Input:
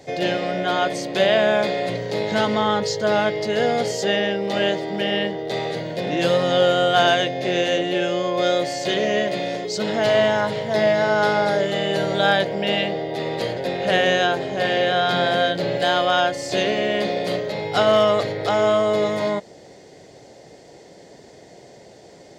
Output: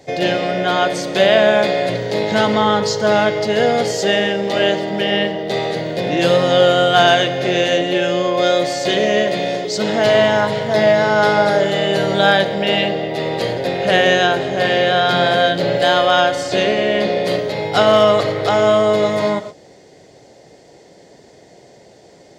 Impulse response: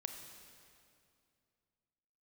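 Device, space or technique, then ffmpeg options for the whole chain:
keyed gated reverb: -filter_complex "[0:a]asettb=1/sr,asplit=3[link_01][link_02][link_03];[link_01]atrim=end=16.434[link_04];[link_02]atrim=start=16.43:end=17.26,asetpts=PTS-STARTPTS,afade=type=in:duration=0.004:curve=qsin,afade=type=out:start_time=0.826:duration=0.004:curve=qsin,highshelf=frequency=8000:gain=-10[link_05];[link_03]atrim=start=17.256[link_06];[link_04][link_05]acrossfade=duration=0.004:curve1=hsin:curve2=qsin[link_07];[link_07][link_06]acrossfade=duration=0.004:curve1=qsin:curve2=hsin,asplit=3[link_08][link_09][link_10];[1:a]atrim=start_sample=2205[link_11];[link_09][link_11]afir=irnorm=-1:irlink=0[link_12];[link_10]apad=whole_len=986978[link_13];[link_12][link_13]sidechaingate=range=-33dB:threshold=-36dB:ratio=16:detection=peak,volume=0.5dB[link_14];[link_08][link_14]amix=inputs=2:normalize=0"

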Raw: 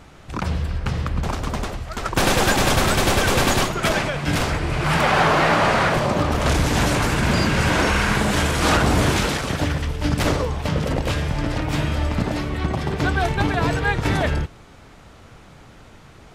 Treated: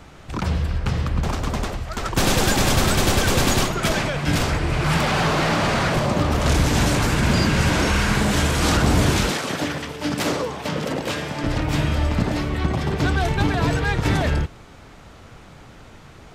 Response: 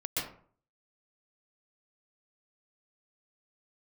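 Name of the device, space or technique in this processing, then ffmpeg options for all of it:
one-band saturation: -filter_complex "[0:a]acrossover=split=340|3500[link_01][link_02][link_03];[link_02]asoftclip=type=tanh:threshold=-22.5dB[link_04];[link_01][link_04][link_03]amix=inputs=3:normalize=0,asettb=1/sr,asplit=3[link_05][link_06][link_07];[link_05]atrim=end=9.314[link_08];[link_06]atrim=start=9.31:end=11.44,asetpts=PTS-STARTPTS,afade=type=in:duration=0.004:curve=qsin,afade=type=out:start_time=2.126:duration=0.004:curve=qsin,highpass=210[link_09];[link_07]atrim=start=11.436[link_10];[link_08][link_09]acrossfade=duration=0.004:curve1=hsin:curve2=qsin[link_11];[link_11][link_10]acrossfade=duration=0.004:curve1=qsin:curve2=hsin,equalizer=frequency=10000:width=4.8:gain=-3,volume=1.5dB"

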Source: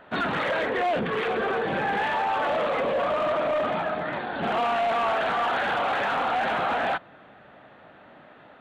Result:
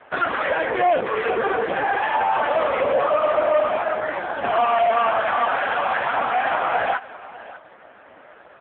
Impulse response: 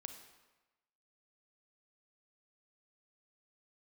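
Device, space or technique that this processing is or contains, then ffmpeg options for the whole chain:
satellite phone: -filter_complex "[0:a]asettb=1/sr,asplit=3[link_01][link_02][link_03];[link_01]atrim=end=2.324[link_04];[link_02]atrim=start=2.32:end=2.82,asetpts=PTS-STARTPTS,afade=type=in:duration=0.004:curve=qsin,afade=type=out:start_time=0.496:duration=0.004:curve=qsin,highshelf=frequency=5700:gain=4[link_05];[link_03]atrim=start=2.816[link_06];[link_04][link_05]acrossfade=duration=0.004:curve1=hsin:curve2=qsin[link_07];[link_07][link_06]acrossfade=duration=0.004:curve1=qsin:curve2=hsin,highpass=340,lowpass=3200,aecho=1:1:595:0.133,volume=8.5dB" -ar 8000 -c:a libopencore_amrnb -b:a 5150

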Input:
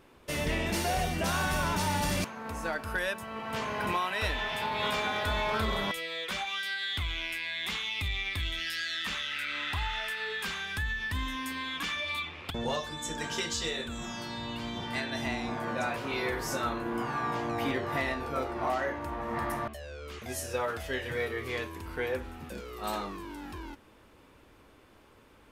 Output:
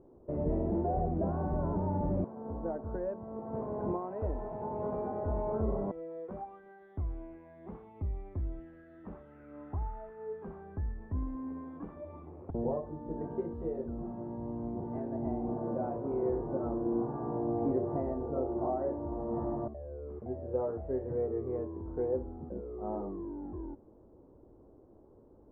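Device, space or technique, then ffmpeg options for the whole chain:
under water: -af "lowpass=frequency=730:width=0.5412,lowpass=frequency=730:width=1.3066,equalizer=frequency=360:width_type=o:width=0.48:gain=5"

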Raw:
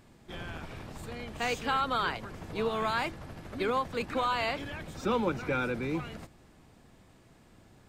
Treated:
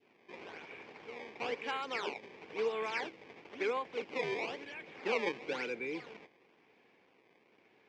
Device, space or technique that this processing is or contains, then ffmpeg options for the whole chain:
circuit-bent sampling toy: -af "acrusher=samples=18:mix=1:aa=0.000001:lfo=1:lforange=28.8:lforate=0.99,highpass=410,equalizer=frequency=430:width_type=q:width=4:gain=6,equalizer=frequency=640:width_type=q:width=4:gain=-6,equalizer=frequency=1300:width_type=q:width=4:gain=-7,equalizer=frequency=2300:width_type=q:width=4:gain=9,equalizer=frequency=4000:width_type=q:width=4:gain=-6,lowpass=frequency=4600:width=0.5412,lowpass=frequency=4600:width=1.3066,adynamicequalizer=threshold=0.00562:dfrequency=1200:dqfactor=0.86:tfrequency=1200:tqfactor=0.86:attack=5:release=100:ratio=0.375:range=3:mode=cutabove:tftype=bell,volume=-3.5dB"

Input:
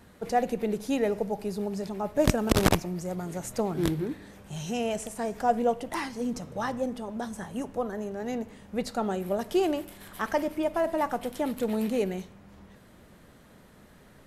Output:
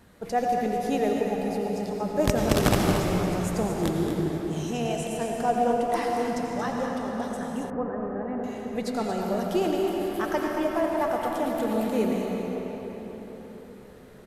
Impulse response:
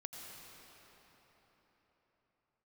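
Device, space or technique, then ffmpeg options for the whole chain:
cave: -filter_complex "[0:a]aecho=1:1:228:0.335[link_01];[1:a]atrim=start_sample=2205[link_02];[link_01][link_02]afir=irnorm=-1:irlink=0,asettb=1/sr,asplit=3[link_03][link_04][link_05];[link_03]atrim=end=7.704[link_06];[link_04]atrim=start=7.7:end=8.44,asetpts=PTS-STARTPTS,afade=type=in:duration=0.004:curve=qsin,afade=type=out:start_time=0.736:duration=0.004:curve=qsin,lowpass=frequency=1800:width=0.5412,lowpass=frequency=1800:width=1.3066[link_07];[link_05]atrim=start=8.436[link_08];[link_06][link_07]acrossfade=duration=0.004:curve1=hsin:curve2=qsin[link_09];[link_09][link_08]acrossfade=duration=0.004:curve1=qsin:curve2=hsin,volume=4.5dB"

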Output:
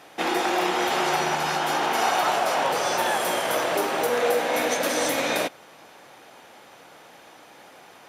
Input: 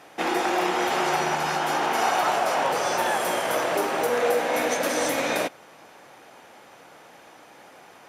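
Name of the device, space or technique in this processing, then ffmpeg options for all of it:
presence and air boost: -af "equalizer=frequency=3700:width_type=o:width=0.77:gain=3.5,highshelf=frequency=12000:gain=4.5"

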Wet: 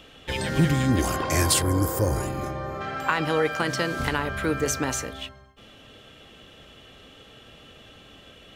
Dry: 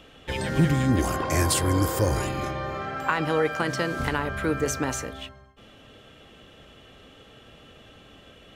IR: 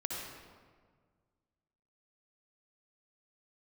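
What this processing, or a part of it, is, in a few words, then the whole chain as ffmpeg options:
presence and air boost: -filter_complex "[0:a]equalizer=frequency=3900:width_type=o:width=1.7:gain=3.5,highshelf=frequency=10000:gain=5,asettb=1/sr,asplit=3[link_01][link_02][link_03];[link_01]atrim=end=1.624[link_04];[link_02]atrim=start=1.62:end=2.81,asetpts=PTS-STARTPTS,afade=type=in:duration=0.004:curve=qsin,afade=type=out:start_time=1.186:duration=0.004:curve=qsin,equalizer=frequency=3300:width_type=o:width=1.8:gain=-11.5[link_05];[link_03]atrim=start=2.806[link_06];[link_04][link_05]acrossfade=duration=0.004:curve1=hsin:curve2=qsin[link_07];[link_07][link_06]acrossfade=duration=0.004:curve1=qsin:curve2=hsin"

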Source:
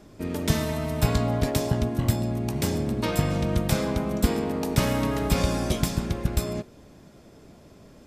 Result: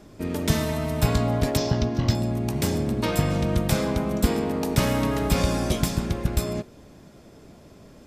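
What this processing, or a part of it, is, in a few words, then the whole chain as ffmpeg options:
parallel distortion: -filter_complex "[0:a]asplit=2[link_01][link_02];[link_02]asoftclip=type=hard:threshold=-21.5dB,volume=-13dB[link_03];[link_01][link_03]amix=inputs=2:normalize=0,asettb=1/sr,asplit=3[link_04][link_05][link_06];[link_04]atrim=end=1.574[link_07];[link_05]atrim=start=1.57:end=2.15,asetpts=PTS-STARTPTS,afade=type=in:duration=0.004:curve=qsin,afade=type=out:start_time=0.576:duration=0.004:curve=qsin,highshelf=frequency=7300:width_type=q:width=3:gain=-11.5[link_08];[link_06]atrim=start=2.146[link_09];[link_07][link_08]acrossfade=duration=0.004:curve1=hsin:curve2=qsin[link_10];[link_10][link_09]acrossfade=duration=0.004:curve1=qsin:curve2=hsin"

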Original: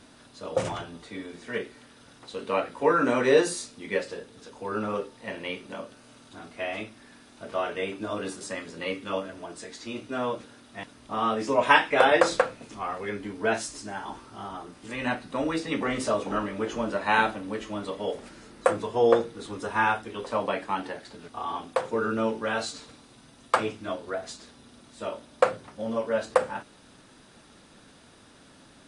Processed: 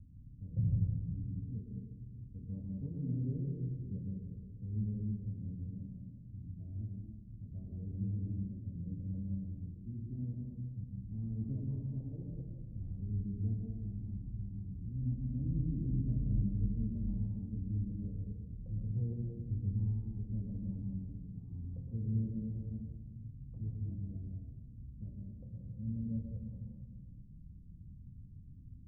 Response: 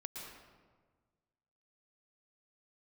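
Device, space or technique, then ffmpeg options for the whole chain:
club heard from the street: -filter_complex "[0:a]alimiter=limit=-12.5dB:level=0:latency=1:release=380,lowpass=frequency=130:width=0.5412,lowpass=frequency=130:width=1.3066[link_01];[1:a]atrim=start_sample=2205[link_02];[link_01][link_02]afir=irnorm=-1:irlink=0,volume=15.5dB"

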